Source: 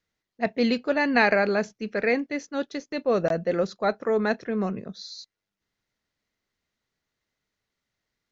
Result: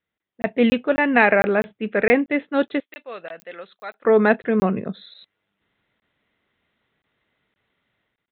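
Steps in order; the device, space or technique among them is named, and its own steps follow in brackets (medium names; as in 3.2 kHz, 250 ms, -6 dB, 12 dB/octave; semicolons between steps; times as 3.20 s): call with lost packets (high-pass 100 Hz 6 dB/octave; resampled via 8 kHz; level rider gain up to 13.5 dB; lost packets of 20 ms random); 2.80–4.05 s: differentiator; trim -1 dB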